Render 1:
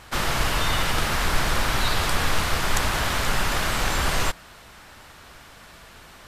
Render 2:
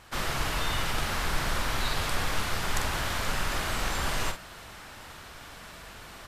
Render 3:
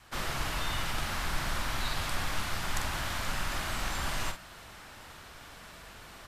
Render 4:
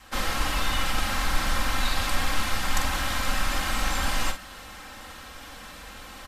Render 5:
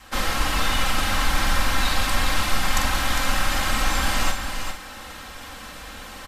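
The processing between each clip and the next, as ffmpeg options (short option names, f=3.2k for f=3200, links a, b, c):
-filter_complex "[0:a]areverse,acompressor=mode=upward:threshold=-30dB:ratio=2.5,areverse,asplit=2[a][b];[b]adelay=45,volume=-7dB[c];[a][c]amix=inputs=2:normalize=0,volume=-7dB"
-af "adynamicequalizer=threshold=0.00158:dfrequency=450:dqfactor=3.3:tfrequency=450:tqfactor=3.3:attack=5:release=100:ratio=0.375:range=3.5:mode=cutabove:tftype=bell,volume=-3.5dB"
-af "aecho=1:1:3.8:0.65,volume=5dB"
-af "aecho=1:1:404:0.447,volume=3.5dB"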